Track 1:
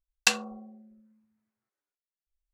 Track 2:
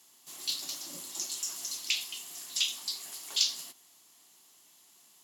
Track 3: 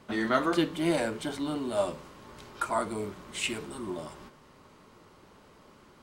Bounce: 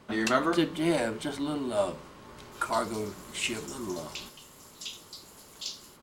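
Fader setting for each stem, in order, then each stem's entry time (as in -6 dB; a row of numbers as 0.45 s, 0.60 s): -10.5 dB, -10.5 dB, +0.5 dB; 0.00 s, 2.25 s, 0.00 s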